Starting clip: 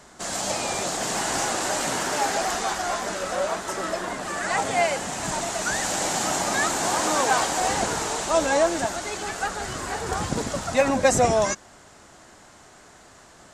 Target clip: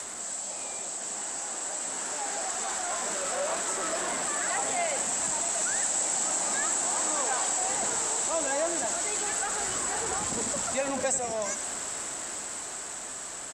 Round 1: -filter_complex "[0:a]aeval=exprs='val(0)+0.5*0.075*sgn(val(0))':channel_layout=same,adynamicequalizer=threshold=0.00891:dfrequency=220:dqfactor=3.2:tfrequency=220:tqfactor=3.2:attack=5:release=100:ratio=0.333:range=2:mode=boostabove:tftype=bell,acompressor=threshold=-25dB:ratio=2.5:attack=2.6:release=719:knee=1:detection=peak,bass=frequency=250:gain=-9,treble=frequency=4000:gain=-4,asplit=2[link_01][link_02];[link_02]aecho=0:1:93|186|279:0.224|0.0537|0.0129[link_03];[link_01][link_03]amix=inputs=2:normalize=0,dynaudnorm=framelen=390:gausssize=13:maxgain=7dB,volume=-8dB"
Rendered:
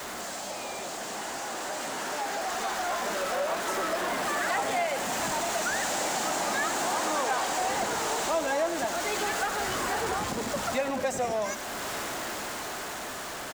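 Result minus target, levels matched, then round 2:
8,000 Hz band −7.0 dB
-filter_complex "[0:a]aeval=exprs='val(0)+0.5*0.075*sgn(val(0))':channel_layout=same,adynamicequalizer=threshold=0.00891:dfrequency=220:dqfactor=3.2:tfrequency=220:tqfactor=3.2:attack=5:release=100:ratio=0.333:range=2:mode=boostabove:tftype=bell,lowpass=frequency=7900:width_type=q:width=11,acompressor=threshold=-25dB:ratio=2.5:attack=2.6:release=719:knee=1:detection=peak,bass=frequency=250:gain=-9,treble=frequency=4000:gain=-4,asplit=2[link_01][link_02];[link_02]aecho=0:1:93|186|279:0.224|0.0537|0.0129[link_03];[link_01][link_03]amix=inputs=2:normalize=0,dynaudnorm=framelen=390:gausssize=13:maxgain=7dB,volume=-8dB"

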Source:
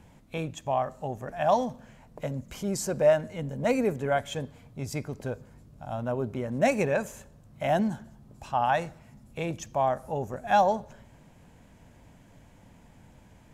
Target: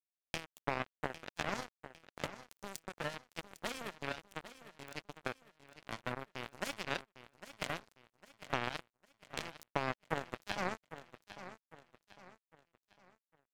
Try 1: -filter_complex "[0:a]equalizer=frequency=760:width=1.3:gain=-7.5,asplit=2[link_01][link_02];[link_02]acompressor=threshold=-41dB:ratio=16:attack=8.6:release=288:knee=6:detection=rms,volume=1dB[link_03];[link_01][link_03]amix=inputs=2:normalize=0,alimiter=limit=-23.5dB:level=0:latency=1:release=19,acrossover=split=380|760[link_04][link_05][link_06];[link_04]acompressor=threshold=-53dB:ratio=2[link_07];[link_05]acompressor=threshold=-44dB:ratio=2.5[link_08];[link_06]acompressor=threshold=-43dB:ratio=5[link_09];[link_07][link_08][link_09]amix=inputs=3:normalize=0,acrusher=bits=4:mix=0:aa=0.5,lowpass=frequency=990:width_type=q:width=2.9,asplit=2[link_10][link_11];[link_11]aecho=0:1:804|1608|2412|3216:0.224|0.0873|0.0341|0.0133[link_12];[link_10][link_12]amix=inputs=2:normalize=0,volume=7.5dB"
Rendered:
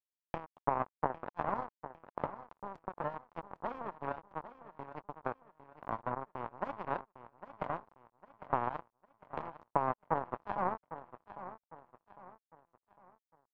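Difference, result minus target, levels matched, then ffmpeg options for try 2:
downward compressor: peak gain reduction −7 dB; 1,000 Hz band +4.5 dB
-filter_complex "[0:a]equalizer=frequency=760:width=1.3:gain=-7.5,asplit=2[link_01][link_02];[link_02]acompressor=threshold=-48.5dB:ratio=16:attack=8.6:release=288:knee=6:detection=rms,volume=1dB[link_03];[link_01][link_03]amix=inputs=2:normalize=0,alimiter=limit=-23.5dB:level=0:latency=1:release=19,acrossover=split=380|760[link_04][link_05][link_06];[link_04]acompressor=threshold=-53dB:ratio=2[link_07];[link_05]acompressor=threshold=-44dB:ratio=2.5[link_08];[link_06]acompressor=threshold=-43dB:ratio=5[link_09];[link_07][link_08][link_09]amix=inputs=3:normalize=0,acrusher=bits=4:mix=0:aa=0.5,asplit=2[link_10][link_11];[link_11]aecho=0:1:804|1608|2412|3216:0.224|0.0873|0.0341|0.0133[link_12];[link_10][link_12]amix=inputs=2:normalize=0,volume=7.5dB"

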